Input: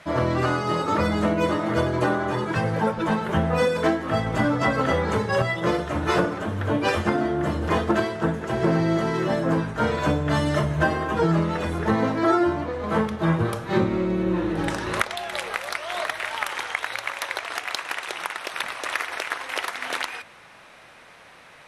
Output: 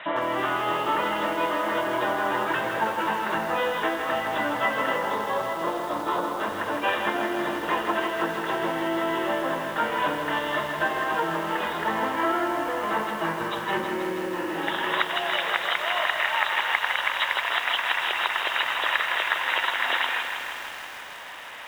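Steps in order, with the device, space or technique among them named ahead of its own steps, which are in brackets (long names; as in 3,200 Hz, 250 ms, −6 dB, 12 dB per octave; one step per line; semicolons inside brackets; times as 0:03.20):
hearing aid with frequency lowering (hearing-aid frequency compression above 2,700 Hz 4 to 1; downward compressor 2.5 to 1, threshold −33 dBFS, peak gain reduction 11.5 dB; loudspeaker in its box 350–5,400 Hz, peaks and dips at 440 Hz −4 dB, 960 Hz +6 dB, 1,800 Hz +6 dB, 3,400 Hz +3 dB)
0:04.96–0:06.40: flat-topped bell 2,200 Hz −12 dB 1.2 octaves
feedback echo at a low word length 160 ms, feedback 80%, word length 8 bits, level −6.5 dB
level +5.5 dB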